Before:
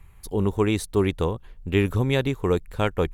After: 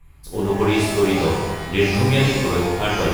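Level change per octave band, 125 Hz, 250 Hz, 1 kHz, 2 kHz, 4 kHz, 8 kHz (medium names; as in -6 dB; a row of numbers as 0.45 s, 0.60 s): +4.0 dB, +4.5 dB, +8.0 dB, +8.5 dB, +9.5 dB, +9.0 dB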